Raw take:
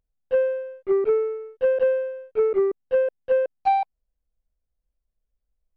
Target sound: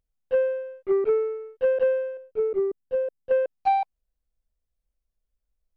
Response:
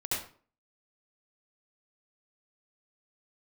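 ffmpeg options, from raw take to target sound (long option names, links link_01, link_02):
-filter_complex "[0:a]asettb=1/sr,asplit=3[link_01][link_02][link_03];[link_01]atrim=end=2.174[link_04];[link_02]atrim=start=2.17:end=3.31,asetpts=PTS-STARTPTS,afade=type=in:duration=0.004:curve=qsin,afade=type=out:start_time=1.136:duration=0.004:curve=qsin,equalizer=frequency=1900:width=0.42:gain=-10[link_05];[link_03]atrim=start=3.306[link_06];[link_04][link_05]acrossfade=duration=0.004:curve1=hsin:curve2=qsin[link_07];[link_07][link_06]acrossfade=duration=0.004:curve1=qsin:curve2=hsin,volume=-1.5dB"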